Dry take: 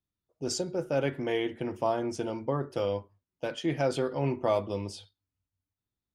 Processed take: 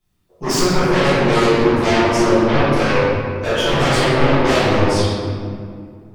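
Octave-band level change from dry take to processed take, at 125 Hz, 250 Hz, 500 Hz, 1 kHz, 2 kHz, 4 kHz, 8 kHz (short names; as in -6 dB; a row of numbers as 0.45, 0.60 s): +17.0, +16.5, +14.0, +17.5, +21.5, +19.0, +15.0 dB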